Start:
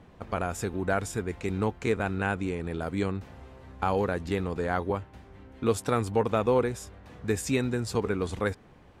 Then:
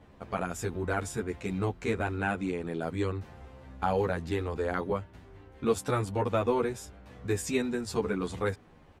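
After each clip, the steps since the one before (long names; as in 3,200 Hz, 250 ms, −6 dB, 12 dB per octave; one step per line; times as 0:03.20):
barber-pole flanger 11 ms −0.88 Hz
level +1 dB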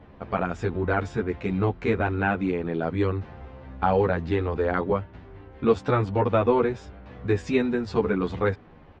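Gaussian smoothing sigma 2.1 samples
level +6.5 dB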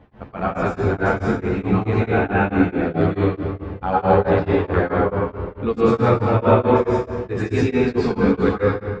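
convolution reverb RT60 1.7 s, pre-delay 100 ms, DRR −8.5 dB
tremolo along a rectified sine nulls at 4.6 Hz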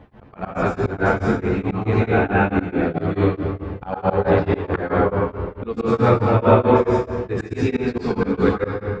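reversed playback
upward compression, threshold −34 dBFS
reversed playback
volume swells 129 ms
level +1 dB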